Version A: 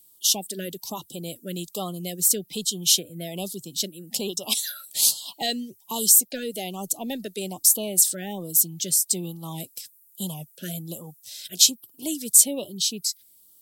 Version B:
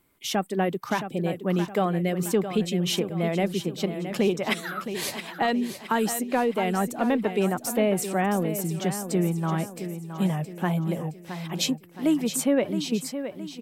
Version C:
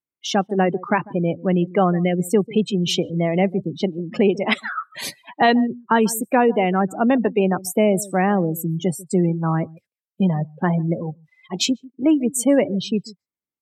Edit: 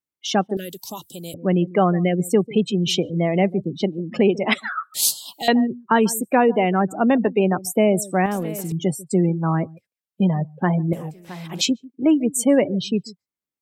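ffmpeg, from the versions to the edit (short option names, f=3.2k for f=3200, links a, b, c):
-filter_complex "[0:a]asplit=2[a][b];[1:a]asplit=2[c][d];[2:a]asplit=5[e][f][g][h][i];[e]atrim=end=0.572[j];[a]atrim=start=0.568:end=1.342[k];[f]atrim=start=1.338:end=4.942[l];[b]atrim=start=4.938:end=5.482[m];[g]atrim=start=5.478:end=8.262[n];[c]atrim=start=8.258:end=8.722[o];[h]atrim=start=8.718:end=10.932[p];[d]atrim=start=10.928:end=11.612[q];[i]atrim=start=11.608[r];[j][k]acrossfade=d=0.004:c1=hsin:c2=hsin[s];[s][l]acrossfade=d=0.004:c1=hsin:c2=hsin[t];[t][m]acrossfade=d=0.004:c1=hsin:c2=hsin[u];[u][n]acrossfade=d=0.004:c1=hsin:c2=hsin[v];[v][o]acrossfade=d=0.004:c1=hsin:c2=hsin[w];[w][p]acrossfade=d=0.004:c1=hsin:c2=hsin[x];[x][q]acrossfade=d=0.004:c1=hsin:c2=hsin[y];[y][r]acrossfade=d=0.004:c1=hsin:c2=hsin"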